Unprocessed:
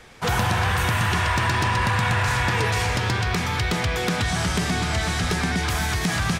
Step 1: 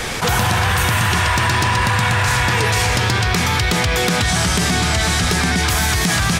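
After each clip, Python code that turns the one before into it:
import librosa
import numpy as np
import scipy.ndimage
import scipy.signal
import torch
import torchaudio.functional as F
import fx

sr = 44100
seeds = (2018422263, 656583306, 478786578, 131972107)

y = fx.high_shelf(x, sr, hz=4200.0, db=6.5)
y = fx.env_flatten(y, sr, amount_pct=70)
y = y * librosa.db_to_amplitude(3.5)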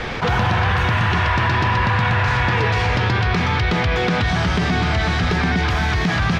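y = fx.air_absorb(x, sr, metres=250.0)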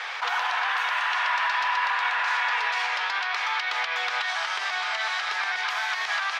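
y = scipy.signal.sosfilt(scipy.signal.butter(4, 830.0, 'highpass', fs=sr, output='sos'), x)
y = y * librosa.db_to_amplitude(-3.5)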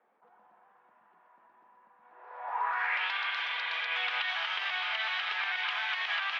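y = fx.spec_repair(x, sr, seeds[0], start_s=3.2, length_s=0.65, low_hz=360.0, high_hz=3400.0, source='both')
y = fx.filter_sweep_lowpass(y, sr, from_hz=210.0, to_hz=3000.0, start_s=1.99, end_s=3.07, q=2.8)
y = y * librosa.db_to_amplitude(-8.5)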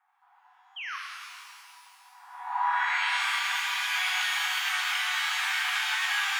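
y = fx.spec_paint(x, sr, seeds[1], shape='fall', start_s=0.76, length_s=0.21, low_hz=1000.0, high_hz=3300.0, level_db=-38.0)
y = fx.brickwall_highpass(y, sr, low_hz=720.0)
y = fx.rev_shimmer(y, sr, seeds[2], rt60_s=2.3, semitones=12, shimmer_db=-8, drr_db=-1.5)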